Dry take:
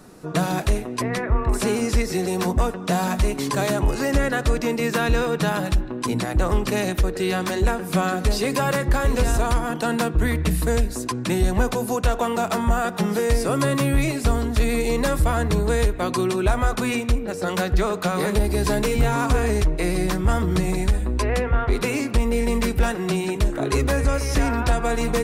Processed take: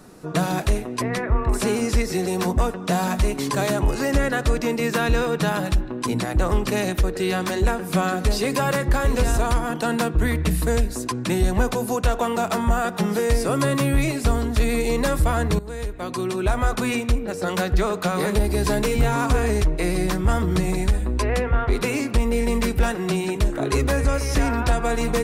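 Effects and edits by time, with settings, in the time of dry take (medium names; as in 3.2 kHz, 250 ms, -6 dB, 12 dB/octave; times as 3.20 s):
15.59–16.69 s: fade in, from -16 dB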